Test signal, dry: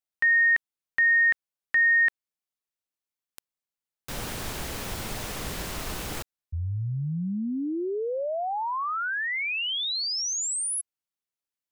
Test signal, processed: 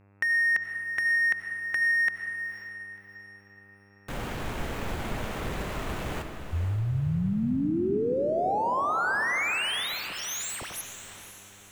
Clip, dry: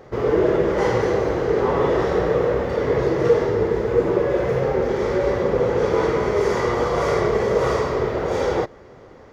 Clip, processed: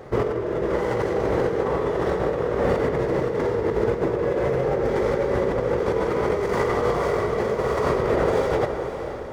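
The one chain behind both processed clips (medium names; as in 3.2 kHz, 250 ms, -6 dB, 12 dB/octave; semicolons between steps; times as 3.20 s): median filter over 9 samples; compressor with a negative ratio -24 dBFS, ratio -1; mains buzz 100 Hz, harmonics 27, -59 dBFS -6 dB/octave; echo that smears into a reverb 515 ms, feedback 43%, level -10 dB; algorithmic reverb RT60 2.2 s, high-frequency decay 0.45×, pre-delay 50 ms, DRR 8 dB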